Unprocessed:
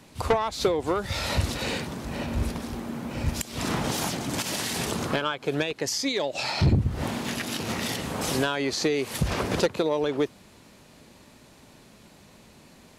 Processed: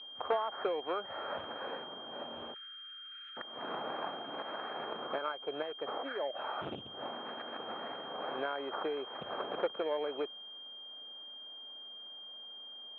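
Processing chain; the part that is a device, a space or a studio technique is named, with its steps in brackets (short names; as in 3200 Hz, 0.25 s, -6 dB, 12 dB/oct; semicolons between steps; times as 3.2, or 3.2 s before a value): toy sound module (decimation joined by straight lines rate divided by 8×; pulse-width modulation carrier 3200 Hz; speaker cabinet 720–3600 Hz, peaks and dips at 970 Hz -6 dB, 2000 Hz -7 dB, 3000 Hz -8 dB); 2.54–3.37 steep high-pass 1300 Hz 96 dB/oct; gain -1 dB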